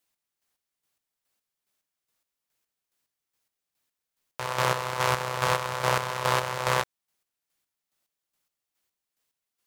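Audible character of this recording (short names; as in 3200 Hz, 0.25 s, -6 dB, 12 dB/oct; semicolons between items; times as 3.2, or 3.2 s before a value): chopped level 2.4 Hz, depth 60%, duty 35%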